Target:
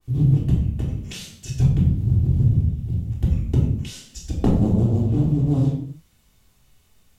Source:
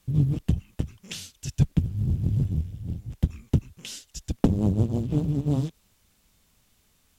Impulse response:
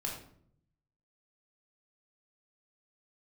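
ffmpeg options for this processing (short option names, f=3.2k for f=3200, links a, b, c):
-filter_complex "[1:a]atrim=start_sample=2205,afade=t=out:st=0.32:d=0.01,atrim=end_sample=14553,asetrate=37044,aresample=44100[a];[0:a][a]afir=irnorm=-1:irlink=0,adynamicequalizer=threshold=0.00708:dfrequency=1700:dqfactor=0.7:tfrequency=1700:tqfactor=0.7:attack=5:release=100:ratio=0.375:range=2:mode=cutabove:tftype=highshelf"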